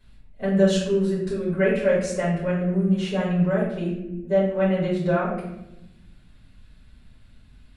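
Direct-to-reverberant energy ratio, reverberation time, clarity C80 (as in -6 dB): -9.5 dB, 0.90 s, 6.0 dB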